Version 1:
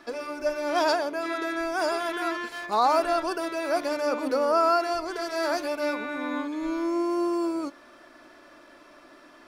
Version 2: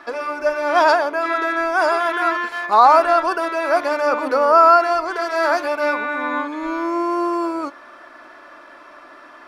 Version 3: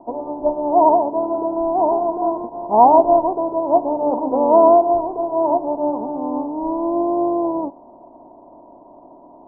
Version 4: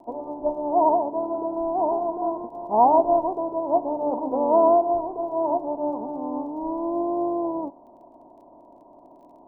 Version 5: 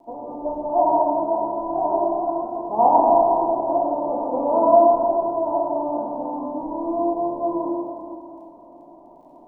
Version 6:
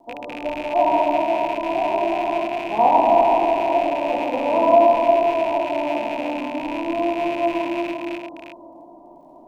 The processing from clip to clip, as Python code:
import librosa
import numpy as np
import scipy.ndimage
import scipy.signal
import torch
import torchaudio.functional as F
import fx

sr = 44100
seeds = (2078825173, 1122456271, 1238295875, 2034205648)

y1 = fx.peak_eq(x, sr, hz=1200.0, db=13.5, octaves=2.6)
y1 = F.gain(torch.from_numpy(y1), -1.0).numpy()
y2 = fx.spec_flatten(y1, sr, power=0.62)
y2 = scipy.signal.sosfilt(scipy.signal.cheby1(6, 6, 990.0, 'lowpass', fs=sr, output='sos'), y2)
y2 = F.gain(torch.from_numpy(y2), 6.0).numpy()
y3 = fx.dmg_crackle(y2, sr, seeds[0], per_s=18.0, level_db=-47.0)
y3 = F.gain(torch.from_numpy(y3), -6.0).numpy()
y4 = fx.rev_plate(y3, sr, seeds[1], rt60_s=2.7, hf_ratio=0.5, predelay_ms=0, drr_db=-4.5)
y4 = F.gain(torch.from_numpy(y4), -4.0).numpy()
y5 = fx.rattle_buzz(y4, sr, strikes_db=-43.0, level_db=-22.0)
y5 = y5 + 10.0 ** (-6.0 / 20.0) * np.pad(y5, (int(351 * sr / 1000.0), 0))[:len(y5)]